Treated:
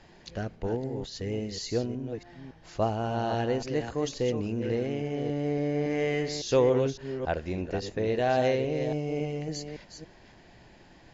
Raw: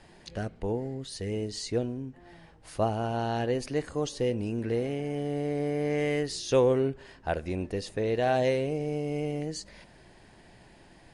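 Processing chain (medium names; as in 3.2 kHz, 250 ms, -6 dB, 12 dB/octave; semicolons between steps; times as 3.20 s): chunks repeated in reverse 279 ms, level -8 dB; MP2 96 kbps 24 kHz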